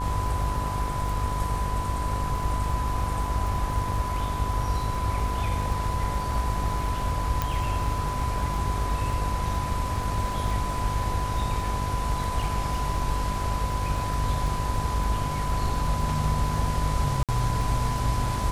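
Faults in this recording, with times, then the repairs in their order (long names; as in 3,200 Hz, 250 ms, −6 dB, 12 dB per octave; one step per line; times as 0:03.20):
mains buzz 50 Hz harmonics 28 −31 dBFS
surface crackle 47 per second −33 dBFS
whistle 1,000 Hz −31 dBFS
0:07.42: click
0:17.23–0:17.29: drop-out 57 ms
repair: click removal
hum removal 50 Hz, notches 28
notch filter 1,000 Hz, Q 30
repair the gap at 0:17.23, 57 ms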